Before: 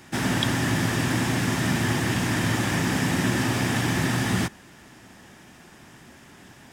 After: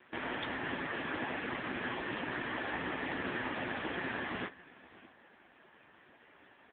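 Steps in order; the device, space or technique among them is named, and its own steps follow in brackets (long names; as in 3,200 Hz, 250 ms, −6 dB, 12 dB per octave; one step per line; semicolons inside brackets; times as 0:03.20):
satellite phone (band-pass filter 360–3,200 Hz; single-tap delay 616 ms −20 dB; level −4 dB; AMR narrowband 5.15 kbit/s 8,000 Hz)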